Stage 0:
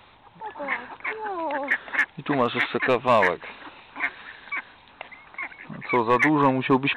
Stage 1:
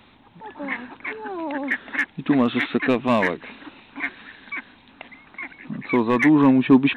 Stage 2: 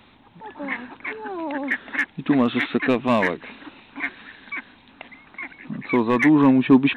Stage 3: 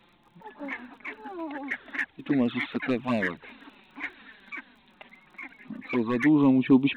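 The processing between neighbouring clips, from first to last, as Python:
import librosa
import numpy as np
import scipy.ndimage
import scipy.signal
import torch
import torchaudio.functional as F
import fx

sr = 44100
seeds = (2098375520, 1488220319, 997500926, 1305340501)

y1 = fx.graphic_eq(x, sr, hz=(250, 500, 1000), db=(11, -3, -4))
y2 = y1
y3 = fx.env_flanger(y2, sr, rest_ms=6.0, full_db=-13.0)
y3 = fx.dmg_crackle(y3, sr, seeds[0], per_s=26.0, level_db=-47.0)
y3 = y3 * 10.0 ** (-4.5 / 20.0)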